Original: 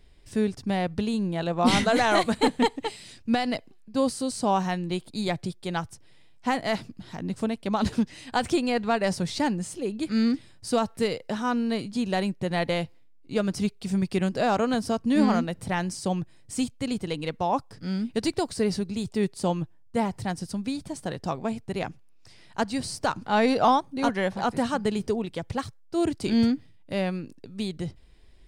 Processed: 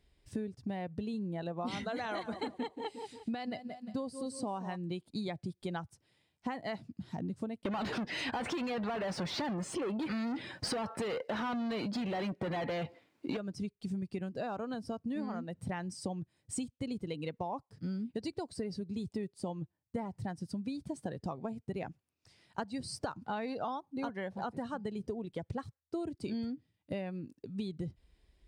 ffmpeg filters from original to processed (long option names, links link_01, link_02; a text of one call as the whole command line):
ffmpeg -i in.wav -filter_complex "[0:a]asettb=1/sr,asplit=3[link_01][link_02][link_03];[link_01]atrim=end=1.864[link_04];[link_02]atrim=start=1.86:end=4.76,asetpts=PTS-STARTPTS,afade=type=in:duration=0.004:curve=qsin,afade=type=out:start_time=2.896:duration=0.004:curve=qsin,aecho=1:1:176|352|528|704:0.251|0.098|0.0382|0.0149,atrim=end_sample=127890[link_05];[link_03]atrim=start=4.756[link_06];[link_04][link_05]acrossfade=duration=0.004:curve1=hsin:curve2=qsin[link_07];[link_07][link_06]acrossfade=duration=0.004:curve1=qsin:curve2=hsin,asettb=1/sr,asplit=3[link_08][link_09][link_10];[link_08]atrim=end=5.304[link_11];[link_09]atrim=start=5.3:end=5.71,asetpts=PTS-STARTPTS,afade=type=in:duration=0.004:curve=qsin,afade=type=out:start_time=0.406:duration=0.004:curve=qsin,acompressor=mode=upward:threshold=-35dB:ratio=2.5:attack=3.2:release=140:knee=2.83:detection=peak[link_12];[link_10]atrim=start=5.706[link_13];[link_11][link_12]acrossfade=duration=0.004:curve1=hsin:curve2=qsin[link_14];[link_14][link_13]acrossfade=duration=0.004:curve1=qsin:curve2=hsin,asettb=1/sr,asplit=3[link_15][link_16][link_17];[link_15]atrim=end=7.654[link_18];[link_16]atrim=start=7.65:end=13.37,asetpts=PTS-STARTPTS,afade=type=in:duration=0.004:curve=qsin,afade=type=out:start_time=5.716:duration=0.004:curve=qsin,asplit=2[link_19][link_20];[link_20]highpass=frequency=720:poles=1,volume=37dB,asoftclip=type=tanh:threshold=-11.5dB[link_21];[link_19][link_21]amix=inputs=2:normalize=0,lowpass=frequency=1900:poles=1,volume=-6dB[link_22];[link_17]atrim=start=13.366[link_23];[link_18][link_22]acrossfade=duration=0.004:curve1=hsin:curve2=qsin[link_24];[link_24][link_23]acrossfade=duration=0.004:curve1=qsin:curve2=hsin,afftdn=noise_reduction=12:noise_floor=-34,highpass=52,acompressor=threshold=-36dB:ratio=12,volume=1.5dB" out.wav